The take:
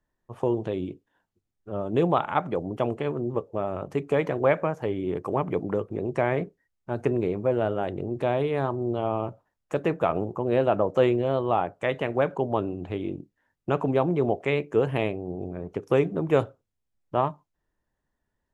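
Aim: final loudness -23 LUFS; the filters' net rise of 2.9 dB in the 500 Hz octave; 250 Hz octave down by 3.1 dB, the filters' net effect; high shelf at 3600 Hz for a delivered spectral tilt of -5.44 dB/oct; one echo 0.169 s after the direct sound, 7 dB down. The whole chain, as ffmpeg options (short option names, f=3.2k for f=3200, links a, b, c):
-af "equalizer=f=250:t=o:g=-8,equalizer=f=500:t=o:g=5.5,highshelf=f=3.6k:g=7,aecho=1:1:169:0.447,volume=1.5dB"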